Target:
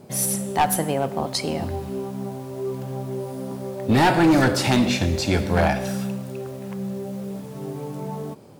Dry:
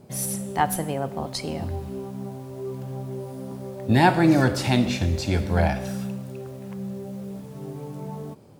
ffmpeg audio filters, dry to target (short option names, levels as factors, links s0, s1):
-af "lowshelf=f=100:g=-10.5,asoftclip=type=hard:threshold=0.126,volume=1.88"